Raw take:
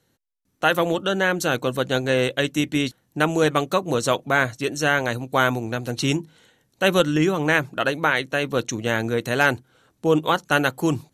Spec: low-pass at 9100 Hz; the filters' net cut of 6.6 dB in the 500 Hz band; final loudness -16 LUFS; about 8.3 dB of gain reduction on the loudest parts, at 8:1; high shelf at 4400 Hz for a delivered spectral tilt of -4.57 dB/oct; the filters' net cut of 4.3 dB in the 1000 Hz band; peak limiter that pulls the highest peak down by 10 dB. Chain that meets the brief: LPF 9100 Hz; bell 500 Hz -7 dB; bell 1000 Hz -3.5 dB; high shelf 4400 Hz -6 dB; compressor 8:1, threshold -26 dBFS; gain +19 dB; limiter -5 dBFS

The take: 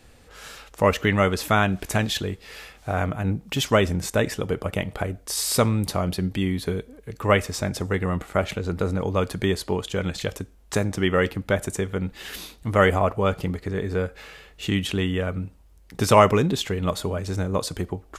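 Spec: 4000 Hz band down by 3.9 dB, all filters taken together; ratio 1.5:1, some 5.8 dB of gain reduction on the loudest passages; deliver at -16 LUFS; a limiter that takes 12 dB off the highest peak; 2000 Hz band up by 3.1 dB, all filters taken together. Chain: bell 2000 Hz +5.5 dB; bell 4000 Hz -7.5 dB; compressor 1.5:1, threshold -26 dBFS; gain +14 dB; limiter -4.5 dBFS

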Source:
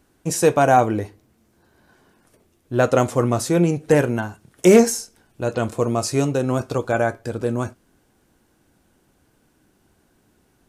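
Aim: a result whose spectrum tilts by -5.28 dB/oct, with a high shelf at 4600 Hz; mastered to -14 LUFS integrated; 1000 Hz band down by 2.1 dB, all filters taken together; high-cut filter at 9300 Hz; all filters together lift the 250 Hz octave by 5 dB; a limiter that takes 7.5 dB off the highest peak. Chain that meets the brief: LPF 9300 Hz; bell 250 Hz +6.5 dB; bell 1000 Hz -4.5 dB; high shelf 4600 Hz +8.5 dB; gain +5.5 dB; limiter -1.5 dBFS

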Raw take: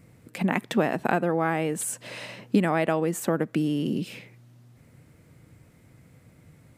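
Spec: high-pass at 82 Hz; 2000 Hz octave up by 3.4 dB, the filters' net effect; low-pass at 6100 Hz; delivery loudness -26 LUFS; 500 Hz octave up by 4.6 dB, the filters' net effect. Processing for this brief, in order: HPF 82 Hz; LPF 6100 Hz; bell 500 Hz +5.5 dB; bell 2000 Hz +4 dB; gain -2 dB

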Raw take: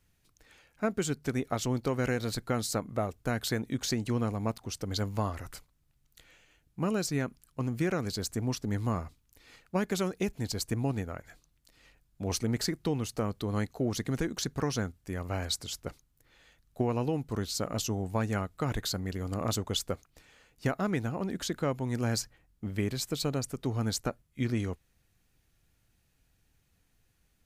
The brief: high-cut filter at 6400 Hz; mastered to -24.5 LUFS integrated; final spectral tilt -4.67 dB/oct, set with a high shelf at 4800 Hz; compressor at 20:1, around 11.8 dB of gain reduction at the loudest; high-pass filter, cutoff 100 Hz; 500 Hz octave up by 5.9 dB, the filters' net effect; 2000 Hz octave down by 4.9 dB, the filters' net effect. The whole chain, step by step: HPF 100 Hz; LPF 6400 Hz; bell 500 Hz +7.5 dB; bell 2000 Hz -8.5 dB; high shelf 4800 Hz +8 dB; compressor 20:1, threshold -33 dBFS; gain +15 dB

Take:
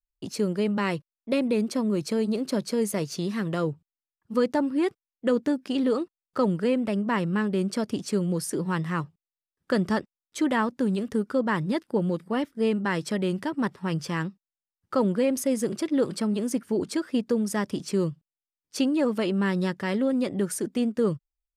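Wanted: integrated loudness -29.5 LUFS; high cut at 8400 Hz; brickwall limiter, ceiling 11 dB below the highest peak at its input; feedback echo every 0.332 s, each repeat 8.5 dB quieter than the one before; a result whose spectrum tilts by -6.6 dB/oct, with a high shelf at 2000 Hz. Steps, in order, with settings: LPF 8400 Hz; high shelf 2000 Hz -5.5 dB; limiter -24.5 dBFS; feedback echo 0.332 s, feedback 38%, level -8.5 dB; gain +3 dB

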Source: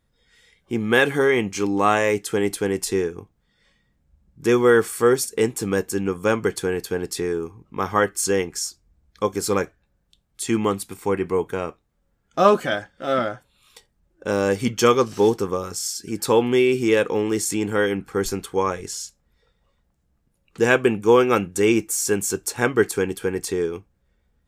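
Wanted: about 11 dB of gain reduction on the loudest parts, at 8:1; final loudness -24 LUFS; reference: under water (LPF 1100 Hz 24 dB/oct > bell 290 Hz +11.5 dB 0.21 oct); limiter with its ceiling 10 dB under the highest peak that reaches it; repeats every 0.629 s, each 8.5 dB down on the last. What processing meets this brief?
compressor 8:1, threshold -22 dBFS; limiter -21 dBFS; LPF 1100 Hz 24 dB/oct; bell 290 Hz +11.5 dB 0.21 oct; feedback echo 0.629 s, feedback 38%, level -8.5 dB; gain +6.5 dB

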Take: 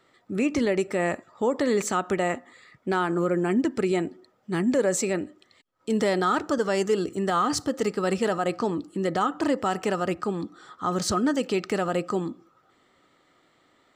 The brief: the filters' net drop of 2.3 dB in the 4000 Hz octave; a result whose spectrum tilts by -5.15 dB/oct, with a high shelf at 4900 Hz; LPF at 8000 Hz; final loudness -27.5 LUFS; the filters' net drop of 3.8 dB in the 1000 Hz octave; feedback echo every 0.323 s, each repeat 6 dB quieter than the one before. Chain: LPF 8000 Hz; bell 1000 Hz -5.5 dB; bell 4000 Hz -4.5 dB; high shelf 4900 Hz +4 dB; feedback echo 0.323 s, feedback 50%, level -6 dB; gain -1 dB

